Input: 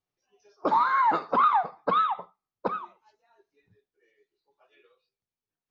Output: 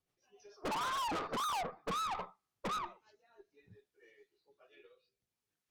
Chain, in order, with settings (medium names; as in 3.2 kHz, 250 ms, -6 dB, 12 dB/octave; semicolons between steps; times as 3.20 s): rotary cabinet horn 6.7 Hz, later 0.65 Hz, at 0.84 s; low-pass that closes with the level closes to 1.3 kHz, closed at -24.5 dBFS; valve stage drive 42 dB, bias 0.5; trim +7 dB